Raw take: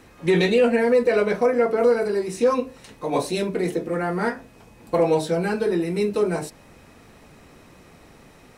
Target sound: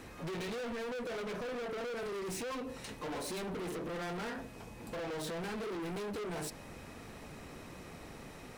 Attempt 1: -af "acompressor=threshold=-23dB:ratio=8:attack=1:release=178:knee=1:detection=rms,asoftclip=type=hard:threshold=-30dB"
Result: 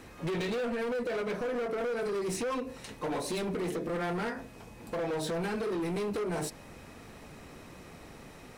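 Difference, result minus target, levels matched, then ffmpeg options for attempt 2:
hard clipping: distortion −5 dB
-af "acompressor=threshold=-23dB:ratio=8:attack=1:release=178:knee=1:detection=rms,asoftclip=type=hard:threshold=-38dB"

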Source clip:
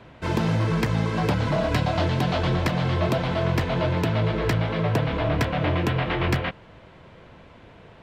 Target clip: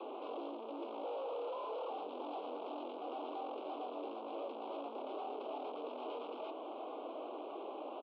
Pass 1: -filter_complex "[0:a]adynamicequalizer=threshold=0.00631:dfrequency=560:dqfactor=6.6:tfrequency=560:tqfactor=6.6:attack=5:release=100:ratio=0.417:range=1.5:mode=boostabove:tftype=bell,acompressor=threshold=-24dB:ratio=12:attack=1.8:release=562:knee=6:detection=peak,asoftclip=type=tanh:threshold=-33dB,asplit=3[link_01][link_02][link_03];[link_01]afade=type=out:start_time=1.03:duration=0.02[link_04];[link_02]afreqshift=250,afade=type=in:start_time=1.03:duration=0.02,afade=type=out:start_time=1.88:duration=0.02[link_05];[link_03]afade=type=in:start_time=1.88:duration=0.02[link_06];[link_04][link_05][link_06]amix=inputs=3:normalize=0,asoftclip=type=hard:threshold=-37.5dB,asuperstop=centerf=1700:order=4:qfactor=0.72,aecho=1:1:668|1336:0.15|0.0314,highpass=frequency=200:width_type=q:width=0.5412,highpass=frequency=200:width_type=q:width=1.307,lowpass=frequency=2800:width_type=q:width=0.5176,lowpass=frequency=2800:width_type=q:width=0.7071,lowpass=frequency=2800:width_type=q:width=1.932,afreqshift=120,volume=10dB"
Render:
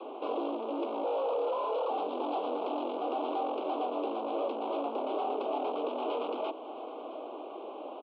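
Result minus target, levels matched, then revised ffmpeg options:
hard clipping: distortion −7 dB
-filter_complex "[0:a]adynamicequalizer=threshold=0.00631:dfrequency=560:dqfactor=6.6:tfrequency=560:tqfactor=6.6:attack=5:release=100:ratio=0.417:range=1.5:mode=boostabove:tftype=bell,acompressor=threshold=-24dB:ratio=12:attack=1.8:release=562:knee=6:detection=peak,asoftclip=type=tanh:threshold=-33dB,asplit=3[link_01][link_02][link_03];[link_01]afade=type=out:start_time=1.03:duration=0.02[link_04];[link_02]afreqshift=250,afade=type=in:start_time=1.03:duration=0.02,afade=type=out:start_time=1.88:duration=0.02[link_05];[link_03]afade=type=in:start_time=1.88:duration=0.02[link_06];[link_04][link_05][link_06]amix=inputs=3:normalize=0,asoftclip=type=hard:threshold=-48.5dB,asuperstop=centerf=1700:order=4:qfactor=0.72,aecho=1:1:668|1336:0.15|0.0314,highpass=frequency=200:width_type=q:width=0.5412,highpass=frequency=200:width_type=q:width=1.307,lowpass=frequency=2800:width_type=q:width=0.5176,lowpass=frequency=2800:width_type=q:width=0.7071,lowpass=frequency=2800:width_type=q:width=1.932,afreqshift=120,volume=10dB"

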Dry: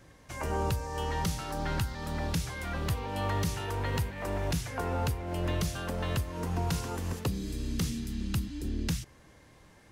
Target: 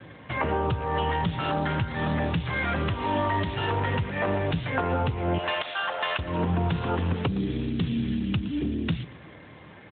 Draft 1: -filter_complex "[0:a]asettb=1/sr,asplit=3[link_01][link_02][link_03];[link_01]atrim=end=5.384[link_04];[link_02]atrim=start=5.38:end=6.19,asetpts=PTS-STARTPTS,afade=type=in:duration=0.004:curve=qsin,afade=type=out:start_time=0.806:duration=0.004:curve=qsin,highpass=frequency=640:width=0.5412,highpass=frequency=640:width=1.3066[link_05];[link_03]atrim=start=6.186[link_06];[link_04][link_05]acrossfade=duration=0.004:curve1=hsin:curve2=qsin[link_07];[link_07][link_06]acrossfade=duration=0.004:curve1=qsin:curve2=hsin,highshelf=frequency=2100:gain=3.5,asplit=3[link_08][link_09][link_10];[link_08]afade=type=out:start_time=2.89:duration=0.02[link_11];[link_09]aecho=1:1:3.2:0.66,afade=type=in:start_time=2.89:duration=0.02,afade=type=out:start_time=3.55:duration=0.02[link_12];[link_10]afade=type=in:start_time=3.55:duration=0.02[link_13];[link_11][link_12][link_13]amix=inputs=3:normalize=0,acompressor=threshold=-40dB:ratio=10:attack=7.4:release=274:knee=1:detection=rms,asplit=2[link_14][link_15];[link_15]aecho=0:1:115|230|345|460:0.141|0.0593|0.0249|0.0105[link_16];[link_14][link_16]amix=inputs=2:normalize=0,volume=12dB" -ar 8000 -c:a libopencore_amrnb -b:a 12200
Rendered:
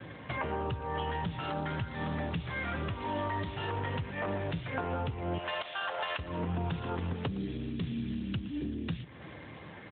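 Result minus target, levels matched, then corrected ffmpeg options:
downward compressor: peak gain reduction +8 dB
-filter_complex "[0:a]asettb=1/sr,asplit=3[link_01][link_02][link_03];[link_01]atrim=end=5.384[link_04];[link_02]atrim=start=5.38:end=6.19,asetpts=PTS-STARTPTS,afade=type=in:duration=0.004:curve=qsin,afade=type=out:start_time=0.806:duration=0.004:curve=qsin,highpass=frequency=640:width=0.5412,highpass=frequency=640:width=1.3066[link_05];[link_03]atrim=start=6.186[link_06];[link_04][link_05]acrossfade=duration=0.004:curve1=hsin:curve2=qsin[link_07];[link_07][link_06]acrossfade=duration=0.004:curve1=qsin:curve2=hsin,highshelf=frequency=2100:gain=3.5,asplit=3[link_08][link_09][link_10];[link_08]afade=type=out:start_time=2.89:duration=0.02[link_11];[link_09]aecho=1:1:3.2:0.66,afade=type=in:start_time=2.89:duration=0.02,afade=type=out:start_time=3.55:duration=0.02[link_12];[link_10]afade=type=in:start_time=3.55:duration=0.02[link_13];[link_11][link_12][link_13]amix=inputs=3:normalize=0,acompressor=threshold=-31dB:ratio=10:attack=7.4:release=274:knee=1:detection=rms,asplit=2[link_14][link_15];[link_15]aecho=0:1:115|230|345|460:0.141|0.0593|0.0249|0.0105[link_16];[link_14][link_16]amix=inputs=2:normalize=0,volume=12dB" -ar 8000 -c:a libopencore_amrnb -b:a 12200

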